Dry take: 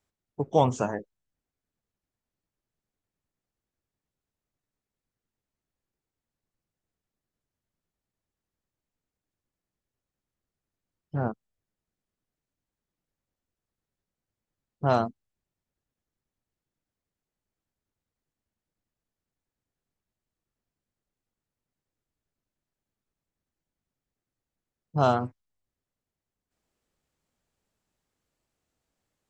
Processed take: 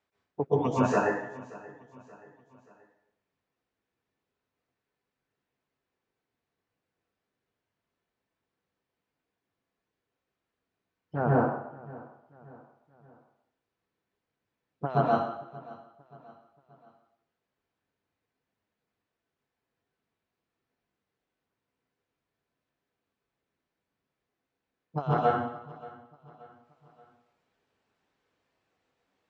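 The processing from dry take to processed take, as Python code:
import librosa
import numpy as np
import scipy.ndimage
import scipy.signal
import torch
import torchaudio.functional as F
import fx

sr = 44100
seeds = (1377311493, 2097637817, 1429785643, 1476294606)

p1 = scipy.signal.sosfilt(scipy.signal.butter(2, 3300.0, 'lowpass', fs=sr, output='sos'), x)
p2 = fx.dereverb_blind(p1, sr, rt60_s=0.79)
p3 = fx.highpass(p2, sr, hz=120.0, slope=6)
p4 = fx.low_shelf(p3, sr, hz=230.0, db=-9.0)
p5 = fx.over_compress(p4, sr, threshold_db=-29.0, ratio=-0.5)
p6 = p5 + fx.echo_feedback(p5, sr, ms=579, feedback_pct=46, wet_db=-20.0, dry=0)
y = fx.rev_plate(p6, sr, seeds[0], rt60_s=0.76, hf_ratio=0.95, predelay_ms=110, drr_db=-6.0)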